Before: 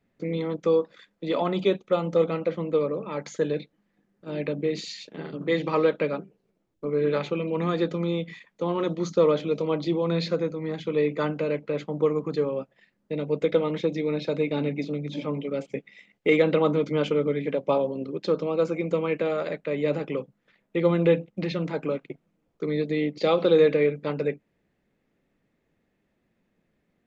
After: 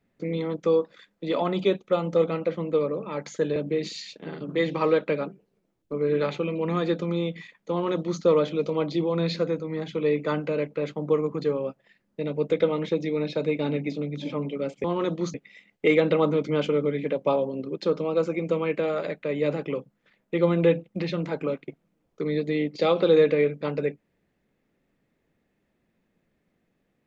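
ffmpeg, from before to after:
-filter_complex "[0:a]asplit=4[a][b][c][d];[a]atrim=end=3.562[e];[b]atrim=start=4.478:end=15.762[f];[c]atrim=start=8.628:end=9.132[g];[d]atrim=start=15.758[h];[e][f]acrossfade=d=0.004:c1=hsin:c2=hsin[i];[i][g]acrossfade=d=0.004:c1=hsin:c2=hsin[j];[j][h]acrossfade=d=0.004:c1=hsin:c2=hsin"

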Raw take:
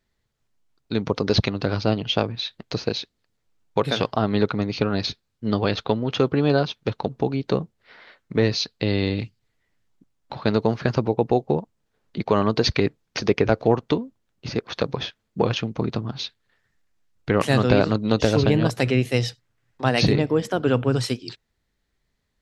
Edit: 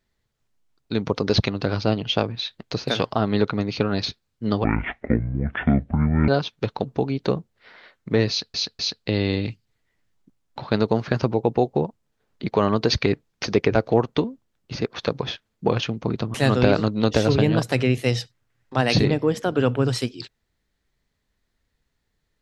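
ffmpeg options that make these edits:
-filter_complex "[0:a]asplit=7[a][b][c][d][e][f][g];[a]atrim=end=2.882[h];[b]atrim=start=3.888:end=5.654[i];[c]atrim=start=5.65:end=6.52,asetpts=PTS-STARTPTS,asetrate=23373,aresample=44100[j];[d]atrim=start=6.516:end=8.782[k];[e]atrim=start=8.528:end=8.782[l];[f]atrim=start=8.528:end=16.082[m];[g]atrim=start=17.418[n];[h][i]acrossfade=d=0.004:c1=hsin:c2=hsin[o];[o][j]acrossfade=d=0.004:c1=hsin:c2=hsin[p];[p][k]acrossfade=d=0.004:c1=hsin:c2=hsin[q];[q][l]acrossfade=d=0.004:c1=hsin:c2=hsin[r];[r][m]acrossfade=d=0.004:c1=hsin:c2=hsin[s];[s][n]acrossfade=d=0.004:c1=hsin:c2=hsin"

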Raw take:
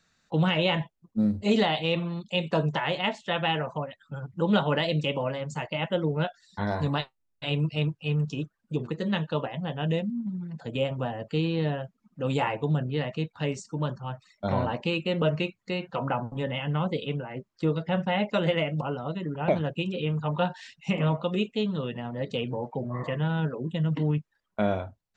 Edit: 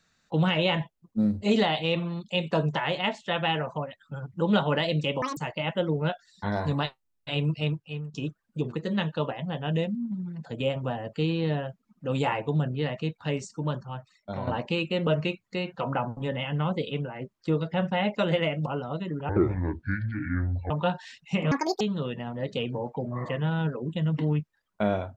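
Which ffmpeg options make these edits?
-filter_complex "[0:a]asplit=9[a][b][c][d][e][f][g][h][i];[a]atrim=end=5.224[j];[b]atrim=start=5.22:end=5.52,asetpts=PTS-STARTPTS,asetrate=88200,aresample=44100[k];[c]atrim=start=5.516:end=8.29,asetpts=PTS-STARTPTS,afade=t=out:st=2.254:d=0.52:silence=0.133352[l];[d]atrim=start=8.29:end=14.62,asetpts=PTS-STARTPTS,afade=t=in:d=0.004:c=hsin:silence=0.133352,afade=t=out:st=5.53:d=0.8:silence=0.375837[m];[e]atrim=start=14.62:end=19.444,asetpts=PTS-STARTPTS,afade=t=in:d=0.004:c=hsin:silence=0.375837[n];[f]atrim=start=19.44:end=20.26,asetpts=PTS-STARTPTS,asetrate=25578,aresample=44100,atrim=end_sample=62348,asetpts=PTS-STARTPTS[o];[g]atrim=start=20.256:end=21.074[p];[h]atrim=start=21.07:end=21.59,asetpts=PTS-STARTPTS,asetrate=78057,aresample=44100[q];[i]atrim=start=21.586[r];[j][k]acrossfade=d=0.004:c1=hsin:c2=hsin[s];[l][m][n]concat=n=3:v=0:a=1[t];[s][t]acrossfade=d=0.004:c1=hsin:c2=hsin[u];[u][o]acrossfade=d=0.004:c1=hsin:c2=hsin[v];[v][p]acrossfade=d=0.004:c1=hsin:c2=hsin[w];[w][q]acrossfade=d=0.004:c1=hsin:c2=hsin[x];[x][r]acrossfade=d=0.004:c1=hsin:c2=hsin"

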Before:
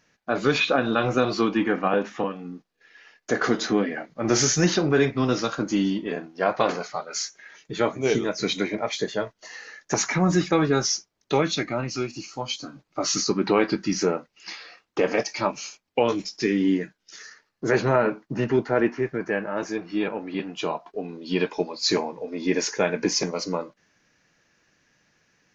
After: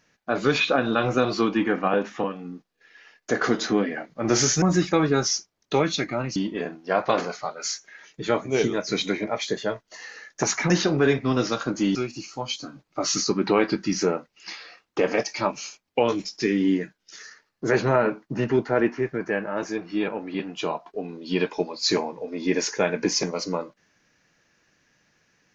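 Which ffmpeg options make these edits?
-filter_complex "[0:a]asplit=5[a][b][c][d][e];[a]atrim=end=4.622[f];[b]atrim=start=10.208:end=11.952[g];[c]atrim=start=5.868:end=10.212[h];[d]atrim=start=4.618:end=5.872[i];[e]atrim=start=11.948[j];[f][g]acrossfade=d=0.004:c1=hsin:c2=hsin[k];[k][h]acrossfade=d=0.004:c1=hsin:c2=hsin[l];[l][i]acrossfade=d=0.004:c1=hsin:c2=hsin[m];[m][j]acrossfade=d=0.004:c1=hsin:c2=hsin"

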